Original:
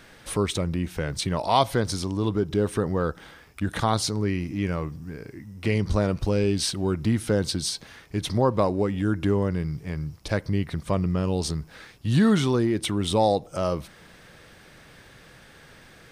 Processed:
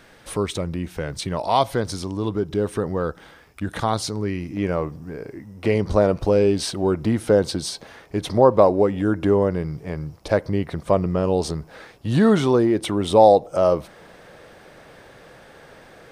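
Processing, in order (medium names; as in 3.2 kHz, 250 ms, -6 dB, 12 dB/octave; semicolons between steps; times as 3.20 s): peaking EQ 600 Hz +4 dB 2.1 oct, from 4.57 s +11.5 dB; trim -1.5 dB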